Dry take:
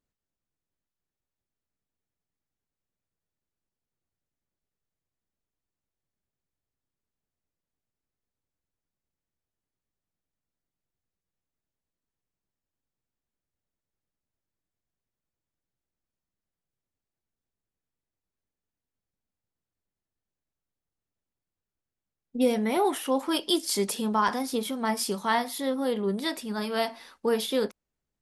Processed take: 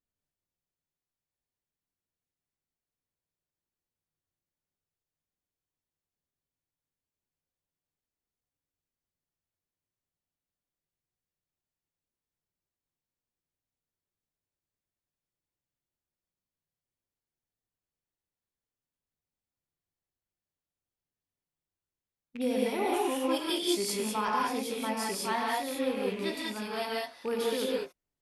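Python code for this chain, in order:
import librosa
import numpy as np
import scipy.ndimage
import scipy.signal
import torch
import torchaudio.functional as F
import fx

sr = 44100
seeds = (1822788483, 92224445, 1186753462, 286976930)

y = fx.rattle_buzz(x, sr, strikes_db=-40.0, level_db=-25.0)
y = fx.rev_gated(y, sr, seeds[0], gate_ms=220, shape='rising', drr_db=-3.5)
y = y * librosa.db_to_amplitude(-8.5)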